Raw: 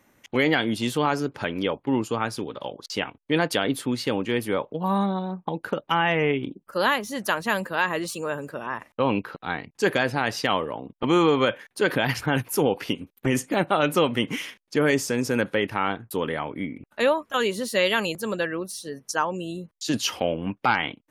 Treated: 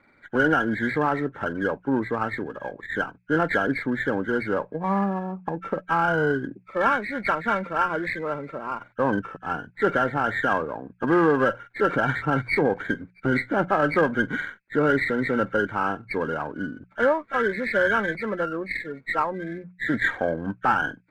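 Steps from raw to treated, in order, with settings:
hearing-aid frequency compression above 1,300 Hz 4 to 1
mains-hum notches 60/120/180 Hz
windowed peak hold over 3 samples

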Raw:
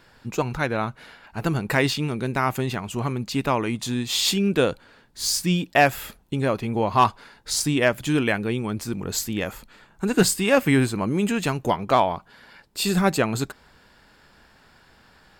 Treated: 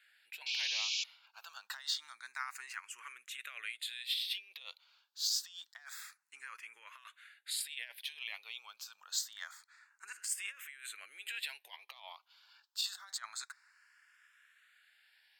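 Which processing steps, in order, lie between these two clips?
dynamic equaliser 3,800 Hz, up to +6 dB, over −47 dBFS, Q 4.5
compressor whose output falls as the input rises −23 dBFS, ratio −0.5
sound drawn into the spectrogram noise, 0:00.46–0:01.04, 2,200–7,400 Hz −24 dBFS
four-pole ladder high-pass 1,300 Hz, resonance 25%
frequency shifter mixed with the dry sound +0.27 Hz
level −4.5 dB

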